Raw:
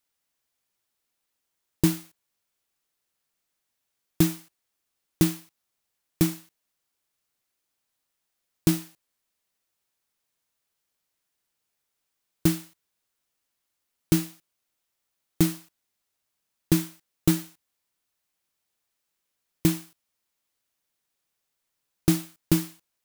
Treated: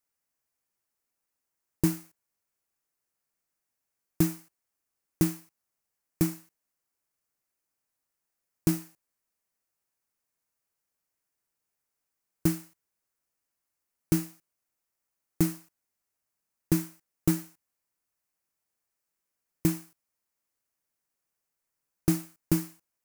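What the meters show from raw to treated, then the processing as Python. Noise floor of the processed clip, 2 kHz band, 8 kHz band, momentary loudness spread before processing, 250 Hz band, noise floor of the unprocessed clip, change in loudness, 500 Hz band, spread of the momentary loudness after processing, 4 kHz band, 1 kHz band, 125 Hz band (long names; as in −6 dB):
−85 dBFS, −5.5 dB, −4.0 dB, 14 LU, −3.5 dB, −81 dBFS, −3.5 dB, −3.5 dB, 14 LU, −9.0 dB, −4.0 dB, −3.5 dB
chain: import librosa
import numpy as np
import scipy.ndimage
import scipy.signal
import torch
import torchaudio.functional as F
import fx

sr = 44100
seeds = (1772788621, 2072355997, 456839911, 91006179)

y = fx.peak_eq(x, sr, hz=3500.0, db=-10.0, octaves=0.67)
y = y * 10.0 ** (-3.5 / 20.0)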